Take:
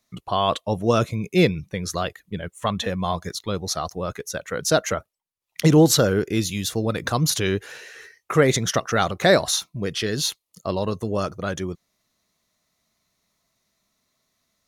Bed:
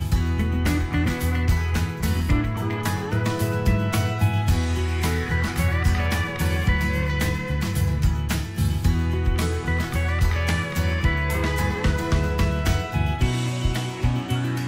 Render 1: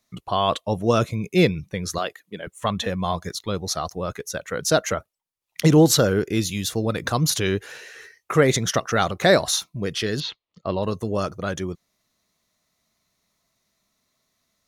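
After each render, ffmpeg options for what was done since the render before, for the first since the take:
-filter_complex "[0:a]asettb=1/sr,asplit=3[a][b][c];[a]atrim=end=1.984[d];[b]atrim=start=1.98:end=2.47,asetpts=PTS-STARTPTS,afade=t=in:d=0.004:c=qsin,afade=t=out:st=0.486:d=0.004:c=qsin,highpass=280[e];[c]atrim=start=2.466[f];[d][e]acrossfade=d=0.004:c1=hsin:c2=qsin[g];[g][f]acrossfade=d=0.004:c1=qsin:c2=hsin,asettb=1/sr,asplit=3[h][i][j];[h]atrim=end=10.204[k];[i]atrim=start=10.2:end=10.83,asetpts=PTS-STARTPTS,afade=t=in:d=0.004:c=qsin,afade=t=out:st=0.626:d=0.004:c=qsin,lowpass=f=3.8k:w=0.5412,lowpass=f=3.8k:w=1.3066[l];[j]atrim=start=10.826[m];[k][l]acrossfade=d=0.004:c1=hsin:c2=qsin[n];[n][m]acrossfade=d=0.004:c1=qsin:c2=hsin"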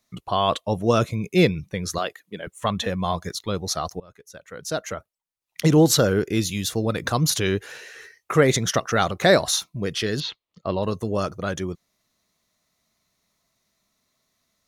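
-filter_complex "[0:a]asplit=2[a][b];[a]atrim=end=4,asetpts=PTS-STARTPTS,afade=t=out:st=3.996:d=0.004:c=hsin:silence=0.0630957[c];[b]atrim=start=4,asetpts=PTS-STARTPTS,afade=t=in:d=2.11:silence=0.0630957[d];[c][d]concat=n=2:v=0:a=1"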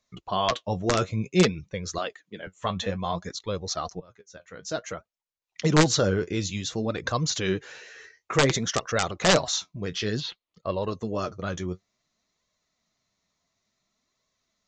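-af "aresample=16000,aeval=exprs='(mod(2.37*val(0)+1,2)-1)/2.37':c=same,aresample=44100,flanger=delay=1.8:depth=9.7:regen=45:speed=0.56:shape=sinusoidal"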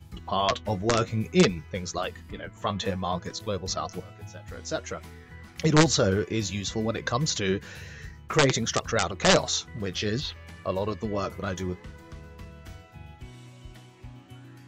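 -filter_complex "[1:a]volume=-22.5dB[a];[0:a][a]amix=inputs=2:normalize=0"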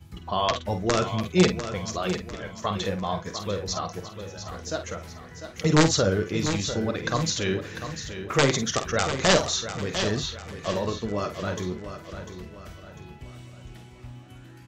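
-filter_complex "[0:a]asplit=2[a][b];[b]adelay=49,volume=-9dB[c];[a][c]amix=inputs=2:normalize=0,asplit=2[d][e];[e]aecho=0:1:698|1396|2094|2792:0.316|0.13|0.0532|0.0218[f];[d][f]amix=inputs=2:normalize=0"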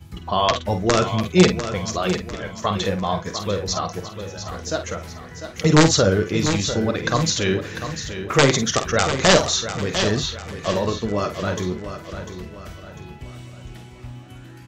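-af "volume=5.5dB,alimiter=limit=-2dB:level=0:latency=1"

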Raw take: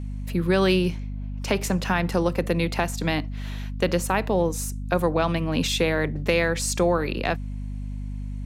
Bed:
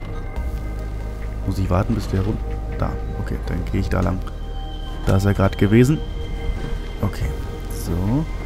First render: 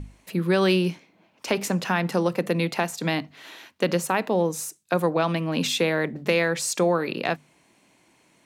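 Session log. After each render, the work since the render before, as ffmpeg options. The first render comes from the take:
-af "bandreject=f=50:t=h:w=6,bandreject=f=100:t=h:w=6,bandreject=f=150:t=h:w=6,bandreject=f=200:t=h:w=6,bandreject=f=250:t=h:w=6"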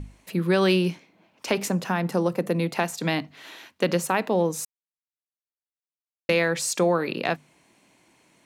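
-filter_complex "[0:a]asettb=1/sr,asplit=3[a][b][c];[a]atrim=end=1.694[d];[b]atrim=start=1.69:end=2.75,asetpts=PTS-STARTPTS,afade=t=in:d=0.004:c=qsin,afade=t=out:st=1.056:d=0.004:c=qsin,equalizer=f=2.9k:w=0.55:g=-6[e];[c]atrim=start=2.746[f];[d][e]acrossfade=d=0.004:c1=hsin:c2=qsin[g];[g][f]acrossfade=d=0.004:c1=qsin:c2=hsin,asplit=3[h][i][j];[h]atrim=end=4.65,asetpts=PTS-STARTPTS,afade=t=out:st=4.646:d=0.004:c=hsin[k];[i]atrim=start=4.65:end=6.29,asetpts=PTS-STARTPTS,volume=0[l];[j]atrim=start=6.29,asetpts=PTS-STARTPTS,afade=t=in:d=0.004:c=hsin[m];[k][l][m]concat=n=3:v=0:a=1"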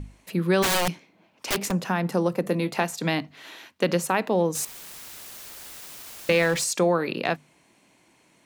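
-filter_complex "[0:a]asplit=3[a][b][c];[a]afade=t=out:st=0.62:d=0.02[d];[b]aeval=exprs='(mod(7.94*val(0)+1,2)-1)/7.94':c=same,afade=t=in:st=0.62:d=0.02,afade=t=out:st=1.7:d=0.02[e];[c]afade=t=in:st=1.7:d=0.02[f];[d][e][f]amix=inputs=3:normalize=0,asettb=1/sr,asplit=3[g][h][i];[g]atrim=end=2.424[j];[h]atrim=start=2.42:end=2.83,asetpts=PTS-STARTPTS,afade=t=in:d=0.004:c=qsin,afade=t=out:st=0.406:d=0.004:c=qsin,asplit=2[k][l];[l]adelay=21,volume=-11dB[m];[k][m]amix=inputs=2:normalize=0,atrim=end_sample=18081[n];[i]atrim=start=2.826[o];[j][n]acrossfade=d=0.004:c1=hsin:c2=qsin[p];[p][o]acrossfade=d=0.004:c1=qsin:c2=hsin,asettb=1/sr,asplit=3[q][r][s];[q]atrim=end=4.554[t];[r]atrim=start=4.55:end=6.64,asetpts=PTS-STARTPTS,afade=t=in:d=0.004:c=qsin,afade=t=out:st=2.086:d=0.004:c=qsin,aeval=exprs='val(0)+0.5*0.0316*sgn(val(0))':c=same[u];[s]atrim=start=6.636[v];[t][u]acrossfade=d=0.004:c1=hsin:c2=qsin[w];[w][v]acrossfade=d=0.004:c1=qsin:c2=hsin"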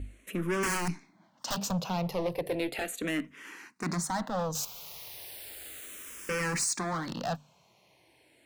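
-filter_complex "[0:a]asoftclip=type=hard:threshold=-25dB,asplit=2[a][b];[b]afreqshift=-0.35[c];[a][c]amix=inputs=2:normalize=1"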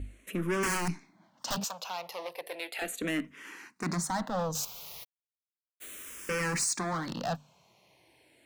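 -filter_complex "[0:a]asettb=1/sr,asplit=3[a][b][c];[a]atrim=end=1.644[d];[b]atrim=start=1.64:end=2.82,asetpts=PTS-STARTPTS,afade=t=in:d=0.004:c=qsin,afade=t=out:st=1.176:d=0.004:c=qsin,highpass=830[e];[c]atrim=start=2.816[f];[d][e]acrossfade=d=0.004:c1=hsin:c2=qsin[g];[g][f]acrossfade=d=0.004:c1=qsin:c2=hsin,asplit=3[h][i][j];[h]afade=t=out:st=5.03:d=0.02[k];[i]acrusher=bits=2:mix=0:aa=0.5,afade=t=in:st=5.03:d=0.02,afade=t=out:st=5.8:d=0.02[l];[j]afade=t=in:st=5.8:d=0.02[m];[k][l][m]amix=inputs=3:normalize=0"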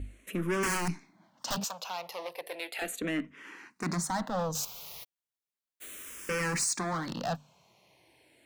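-filter_complex "[0:a]asettb=1/sr,asplit=3[a][b][c];[a]atrim=end=3.004[d];[b]atrim=start=3:end=3.71,asetpts=PTS-STARTPTS,afade=t=in:d=0.004:c=qsin,afade=t=out:st=0.706:d=0.004:c=qsin,aemphasis=mode=reproduction:type=50kf[e];[c]atrim=start=3.706[f];[d][e]acrossfade=d=0.004:c1=hsin:c2=qsin[g];[g][f]acrossfade=d=0.004:c1=qsin:c2=hsin"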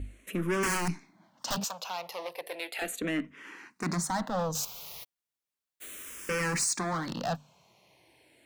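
-af "volume=1dB"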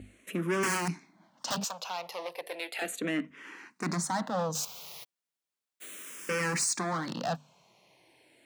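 -af "highpass=130,equalizer=f=14k:w=2.3:g=-9"

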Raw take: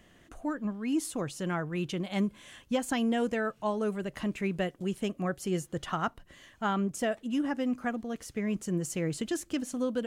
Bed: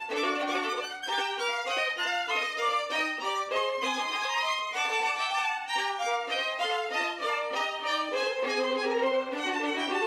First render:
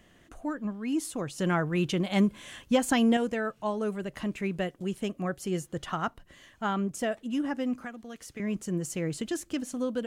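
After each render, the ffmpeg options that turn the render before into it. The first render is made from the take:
-filter_complex "[0:a]asettb=1/sr,asplit=3[a][b][c];[a]atrim=end=1.384[d];[b]atrim=start=1.38:end=3.17,asetpts=PTS-STARTPTS,afade=t=in:d=0.004:c=qsin,afade=t=out:st=1.786:d=0.004:c=qsin,acontrast=35[e];[c]atrim=start=3.166[f];[d][e]acrossfade=d=0.004:c1=hsin:c2=qsin[g];[g][f]acrossfade=d=0.004:c1=qsin:c2=hsin,asettb=1/sr,asplit=3[h][i][j];[h]atrim=end=7.804[k];[i]atrim=start=7.8:end=8.4,asetpts=PTS-STARTPTS,afade=t=in:d=0.004:c=qsin,afade=t=out:st=0.596:d=0.004:c=qsin,acrossover=split=210|1300[l][m][n];[l]acompressor=threshold=-53dB:ratio=4[o];[m]acompressor=threshold=-43dB:ratio=4[p];[n]acompressor=threshold=-41dB:ratio=4[q];[o][p][q]amix=inputs=3:normalize=0[r];[j]atrim=start=8.396[s];[k][r]acrossfade=d=0.004:c1=hsin:c2=qsin[t];[t][s]acrossfade=d=0.004:c1=qsin:c2=hsin"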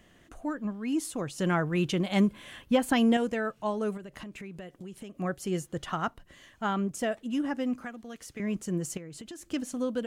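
-filter_complex "[0:a]asettb=1/sr,asplit=3[a][b][c];[a]atrim=end=2.334[d];[b]atrim=start=2.33:end=2.96,asetpts=PTS-STARTPTS,afade=t=in:d=0.004:c=qsin,afade=t=out:st=0.626:d=0.004:c=qsin,equalizer=f=6.7k:w=1.3:g=-9[e];[c]atrim=start=2.956[f];[d][e]acrossfade=d=0.004:c1=hsin:c2=qsin[g];[g][f]acrossfade=d=0.004:c1=qsin:c2=hsin,asettb=1/sr,asplit=3[h][i][j];[h]atrim=end=3.974[k];[i]atrim=start=3.97:end=5.18,asetpts=PTS-STARTPTS,afade=t=in:d=0.004:c=qsin,afade=t=out:st=1.206:d=0.004:c=qsin,acompressor=threshold=-39dB:ratio=6:attack=3.2:release=140:knee=1:detection=peak[l];[j]atrim=start=5.176[m];[k][l]acrossfade=d=0.004:c1=hsin:c2=qsin[n];[n][m]acrossfade=d=0.004:c1=qsin:c2=hsin,asettb=1/sr,asplit=3[o][p][q];[o]atrim=end=8.974[r];[p]atrim=start=8.97:end=9.5,asetpts=PTS-STARTPTS,afade=t=in:d=0.004:c=qsin,afade=t=out:st=0.526:d=0.004:c=qsin,acompressor=threshold=-40dB:ratio=6:attack=3.2:release=140:knee=1:detection=peak[s];[q]atrim=start=9.496[t];[r][s]acrossfade=d=0.004:c1=hsin:c2=qsin[u];[u][t]acrossfade=d=0.004:c1=qsin:c2=hsin"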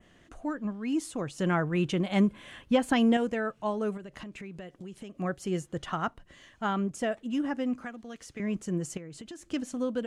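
-af "lowpass=8.5k,adynamicequalizer=threshold=0.002:dfrequency=4800:dqfactor=1.1:tfrequency=4800:tqfactor=1.1:attack=5:release=100:ratio=0.375:range=2.5:mode=cutabove:tftype=bell"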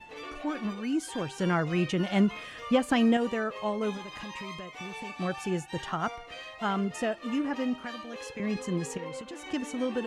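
-filter_complex "[1:a]volume=-13dB[a];[0:a][a]amix=inputs=2:normalize=0"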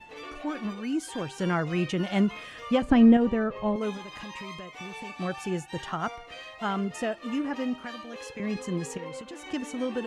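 -filter_complex "[0:a]asettb=1/sr,asplit=3[a][b][c];[a]atrim=end=2.824[d];[b]atrim=start=2.82:end=3.76,asetpts=PTS-STARTPTS,afade=t=in:d=0.004:c=qsin,afade=t=out:st=0.936:d=0.004:c=qsin,aemphasis=mode=reproduction:type=riaa[e];[c]atrim=start=3.756[f];[d][e]acrossfade=d=0.004:c1=hsin:c2=qsin[g];[g][f]acrossfade=d=0.004:c1=qsin:c2=hsin"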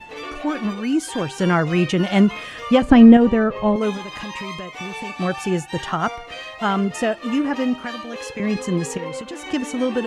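-af "volume=9dB,alimiter=limit=-1dB:level=0:latency=1"

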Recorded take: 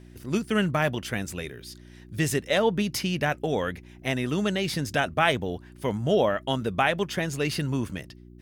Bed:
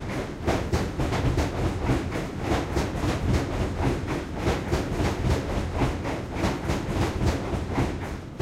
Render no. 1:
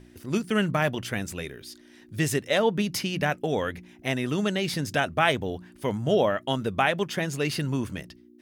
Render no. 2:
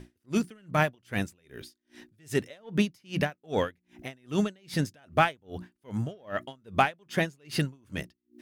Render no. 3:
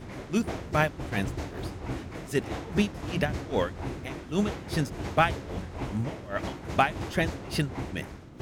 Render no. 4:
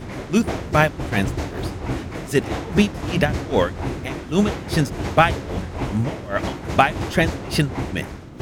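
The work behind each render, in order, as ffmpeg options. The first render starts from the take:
-af "bandreject=f=60:t=h:w=4,bandreject=f=120:t=h:w=4,bandreject=f=180:t=h:w=4"
-filter_complex "[0:a]asplit=2[a][b];[b]asoftclip=type=tanh:threshold=-21.5dB,volume=-5dB[c];[a][c]amix=inputs=2:normalize=0,aeval=exprs='val(0)*pow(10,-37*(0.5-0.5*cos(2*PI*2.5*n/s))/20)':c=same"
-filter_complex "[1:a]volume=-10dB[a];[0:a][a]amix=inputs=2:normalize=0"
-af "volume=8.5dB,alimiter=limit=-2dB:level=0:latency=1"

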